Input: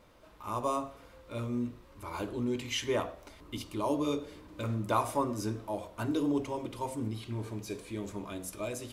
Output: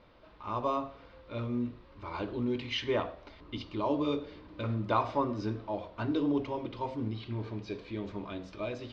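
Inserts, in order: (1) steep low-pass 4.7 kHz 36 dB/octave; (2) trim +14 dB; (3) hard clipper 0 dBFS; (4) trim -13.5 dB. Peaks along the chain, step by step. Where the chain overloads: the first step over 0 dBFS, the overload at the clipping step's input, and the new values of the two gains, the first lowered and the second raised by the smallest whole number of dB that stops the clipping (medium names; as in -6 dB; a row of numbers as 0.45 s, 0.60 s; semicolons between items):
-16.0 dBFS, -2.0 dBFS, -2.0 dBFS, -15.5 dBFS; nothing clips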